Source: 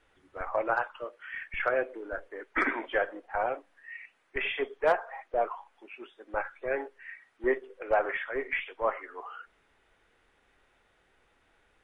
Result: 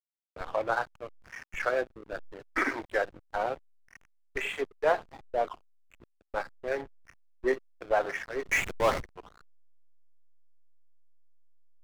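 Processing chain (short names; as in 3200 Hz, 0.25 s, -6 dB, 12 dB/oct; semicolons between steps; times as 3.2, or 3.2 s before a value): backlash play -32.5 dBFS; 8.49–9.03 power-law curve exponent 0.5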